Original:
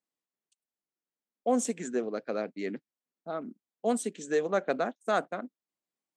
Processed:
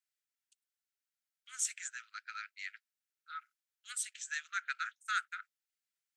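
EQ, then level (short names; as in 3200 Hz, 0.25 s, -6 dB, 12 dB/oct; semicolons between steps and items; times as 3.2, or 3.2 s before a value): Chebyshev high-pass 1300 Hz, order 8; +1.5 dB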